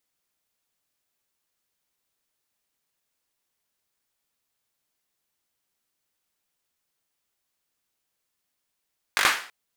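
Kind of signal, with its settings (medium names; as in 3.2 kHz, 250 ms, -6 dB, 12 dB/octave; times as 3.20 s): hand clap length 0.33 s, bursts 5, apart 20 ms, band 1.6 kHz, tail 0.44 s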